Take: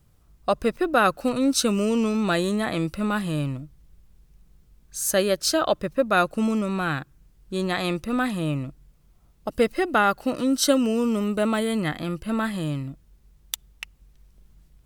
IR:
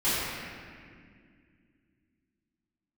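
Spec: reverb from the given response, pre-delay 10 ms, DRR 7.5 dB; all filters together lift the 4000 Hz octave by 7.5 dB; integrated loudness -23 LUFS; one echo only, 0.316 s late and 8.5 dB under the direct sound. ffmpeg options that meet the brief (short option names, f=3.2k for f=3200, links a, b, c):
-filter_complex "[0:a]equalizer=f=4k:t=o:g=9,aecho=1:1:316:0.376,asplit=2[a][b];[1:a]atrim=start_sample=2205,adelay=10[c];[b][c]afir=irnorm=-1:irlink=0,volume=-21dB[d];[a][d]amix=inputs=2:normalize=0,volume=-1dB"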